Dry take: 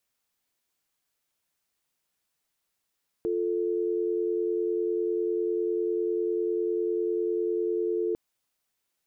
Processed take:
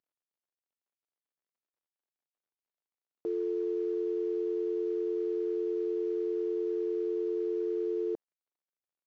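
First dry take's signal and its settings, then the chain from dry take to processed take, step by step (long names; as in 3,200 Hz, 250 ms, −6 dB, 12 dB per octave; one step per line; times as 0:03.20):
call progress tone dial tone, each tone −27.5 dBFS 4.90 s
variable-slope delta modulation 32 kbit/s
resonant band-pass 410 Hz, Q 0.64
low-shelf EQ 490 Hz −6 dB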